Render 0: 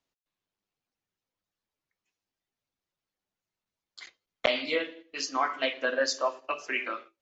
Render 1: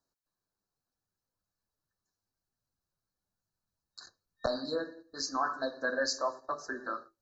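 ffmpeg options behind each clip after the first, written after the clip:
-filter_complex "[0:a]afftfilt=real='re*(1-between(b*sr/4096,1800,3800))':imag='im*(1-between(b*sr/4096,1800,3800))':win_size=4096:overlap=0.75,asubboost=boost=3.5:cutoff=180,asplit=2[a][b];[b]alimiter=level_in=2dB:limit=-24dB:level=0:latency=1:release=11,volume=-2dB,volume=-2dB[c];[a][c]amix=inputs=2:normalize=0,volume=-5.5dB"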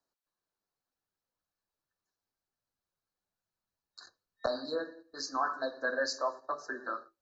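-filter_complex "[0:a]bass=f=250:g=-8,treble=f=4k:g=-12,acrossover=split=170|3400[a][b][c];[c]acontrast=50[d];[a][b][d]amix=inputs=3:normalize=0"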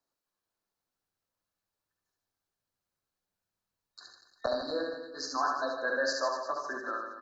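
-af "aecho=1:1:70|150.5|243.1|349.5|472:0.631|0.398|0.251|0.158|0.1"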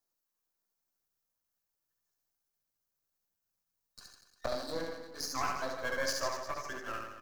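-filter_complex "[0:a]aeval=exprs='if(lt(val(0),0),0.251*val(0),val(0))':c=same,acrossover=split=230|1200[a][b][c];[c]aexciter=amount=2.3:drive=4.3:freq=5.3k[d];[a][b][d]amix=inputs=3:normalize=0,volume=-1dB"

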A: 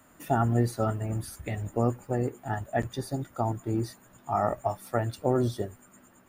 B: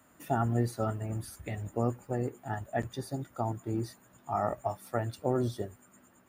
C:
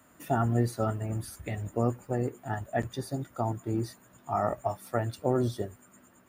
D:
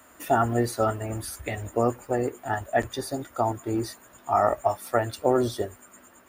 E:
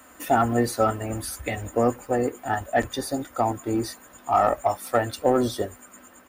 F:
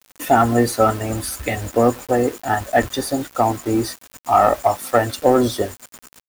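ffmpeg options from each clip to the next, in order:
-af "highpass=46,volume=-4dB"
-af "bandreject=f=820:w=23,volume=2.5dB"
-af "equalizer=f=150:w=1.1:g=-14,volume=8dB"
-filter_complex "[0:a]asplit=2[a][b];[b]asoftclip=type=tanh:threshold=-17.5dB,volume=-4dB[c];[a][c]amix=inputs=2:normalize=0,aecho=1:1:3.9:0.31,volume=-1.5dB"
-af "acrusher=bits=6:mix=0:aa=0.000001,volume=6dB"

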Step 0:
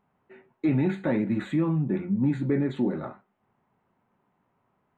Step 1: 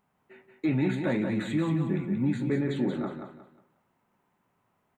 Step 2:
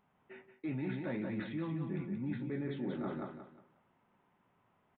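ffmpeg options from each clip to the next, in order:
-af "highshelf=f=2.8k:g=10.5,aecho=1:1:180|360|540|720:0.501|0.155|0.0482|0.0149,volume=-3dB"
-af "areverse,acompressor=threshold=-36dB:ratio=5,areverse,aresample=8000,aresample=44100"

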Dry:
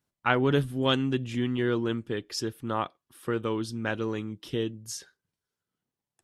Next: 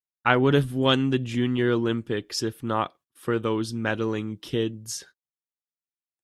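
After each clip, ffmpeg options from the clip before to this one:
-af "agate=range=-31dB:threshold=-52dB:ratio=16:detection=peak,volume=4dB"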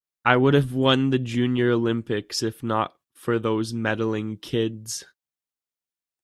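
-af "adynamicequalizer=threshold=0.02:dfrequency=1600:dqfactor=0.7:tfrequency=1600:tqfactor=0.7:attack=5:release=100:ratio=0.375:range=2:mode=cutabove:tftype=highshelf,volume=2dB"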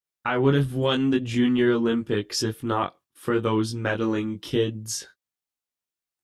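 -af "alimiter=limit=-12.5dB:level=0:latency=1:release=152,flanger=delay=19:depth=2.9:speed=0.83,volume=4dB"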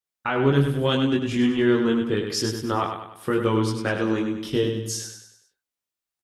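-af "aecho=1:1:99|198|297|396|495:0.473|0.218|0.1|0.0461|0.0212"

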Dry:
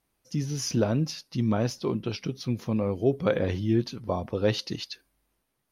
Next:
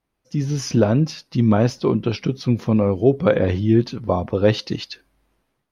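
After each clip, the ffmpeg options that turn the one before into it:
-af "lowpass=f=2.8k:p=1,dynaudnorm=f=250:g=3:m=10dB"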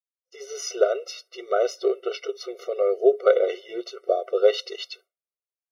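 -af "agate=range=-33dB:threshold=-41dB:ratio=3:detection=peak,afftfilt=real='re*eq(mod(floor(b*sr/1024/380),2),1)':imag='im*eq(mod(floor(b*sr/1024/380),2),1)':win_size=1024:overlap=0.75"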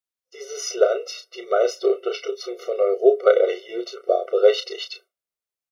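-filter_complex "[0:a]asplit=2[a][b];[b]adelay=33,volume=-8.5dB[c];[a][c]amix=inputs=2:normalize=0,volume=2.5dB"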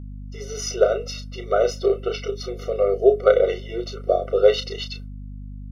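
-af "aeval=exprs='val(0)+0.02*(sin(2*PI*50*n/s)+sin(2*PI*2*50*n/s)/2+sin(2*PI*3*50*n/s)/3+sin(2*PI*4*50*n/s)/4+sin(2*PI*5*50*n/s)/5)':c=same"

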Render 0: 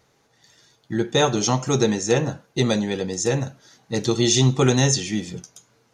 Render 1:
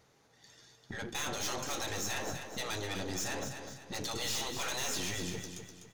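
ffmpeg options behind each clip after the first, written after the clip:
-af "afftfilt=real='re*lt(hypot(re,im),0.224)':imag='im*lt(hypot(re,im),0.224)':win_size=1024:overlap=0.75,aeval=exprs='(tanh(39.8*val(0)+0.55)-tanh(0.55))/39.8':c=same,aecho=1:1:250|500|750|1000:0.398|0.151|0.0575|0.0218,volume=-1.5dB"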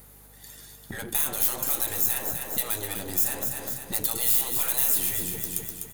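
-af "acompressor=threshold=-41dB:ratio=4,aeval=exprs='val(0)+0.000794*(sin(2*PI*50*n/s)+sin(2*PI*2*50*n/s)/2+sin(2*PI*3*50*n/s)/3+sin(2*PI*4*50*n/s)/4+sin(2*PI*5*50*n/s)/5)':c=same,aexciter=amount=7.1:drive=9.7:freq=8.7k,volume=8dB"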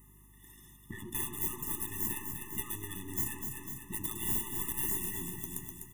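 -filter_complex "[0:a]asplit=2[a][b];[b]acrusher=samples=34:mix=1:aa=0.000001,volume=-9.5dB[c];[a][c]amix=inputs=2:normalize=0,asuperstop=centerf=4400:order=12:qfactor=2.4,afftfilt=real='re*eq(mod(floor(b*sr/1024/420),2),0)':imag='im*eq(mod(floor(b*sr/1024/420),2),0)':win_size=1024:overlap=0.75,volume=-7.5dB"

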